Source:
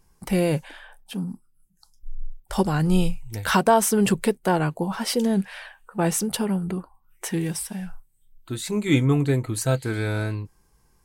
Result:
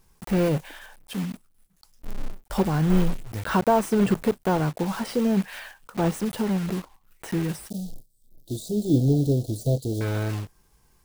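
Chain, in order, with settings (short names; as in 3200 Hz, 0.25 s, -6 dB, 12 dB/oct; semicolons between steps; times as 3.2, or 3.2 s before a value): block floating point 3-bit; de-esser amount 65%; 7.7–10.01 inverse Chebyshev band-stop 1100–2300 Hz, stop band 50 dB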